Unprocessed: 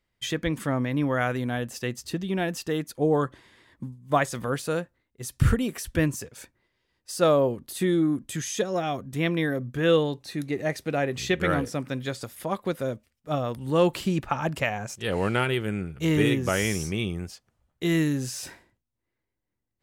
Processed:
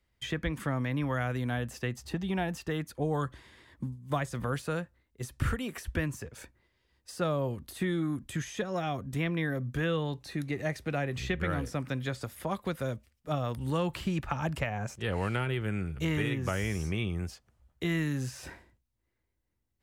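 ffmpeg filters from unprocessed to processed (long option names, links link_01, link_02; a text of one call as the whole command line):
ffmpeg -i in.wav -filter_complex "[0:a]asettb=1/sr,asplit=3[link_01][link_02][link_03];[link_01]atrim=end=1.964[link_04];[link_02]atrim=start=1.96:end=2.56,asetpts=PTS-STARTPTS,afade=type=in:duration=0.004:curve=qsin,afade=type=out:start_time=0.596:duration=0.004:curve=qsin,equalizer=frequency=810:width_type=o:width=0.36:gain=9.5[link_05];[link_03]atrim=start=2.556[link_06];[link_04][link_05]acrossfade=duration=0.004:curve1=hsin:curve2=qsin[link_07];[link_07][link_06]acrossfade=duration=0.004:curve1=qsin:curve2=hsin,equalizer=frequency=61:width_type=o:width=0.89:gain=10.5,acrossover=split=190|760|2600[link_08][link_09][link_10][link_11];[link_08]acompressor=threshold=-32dB:ratio=4[link_12];[link_09]acompressor=threshold=-37dB:ratio=4[link_13];[link_10]acompressor=threshold=-35dB:ratio=4[link_14];[link_11]acompressor=threshold=-48dB:ratio=4[link_15];[link_12][link_13][link_14][link_15]amix=inputs=4:normalize=0" out.wav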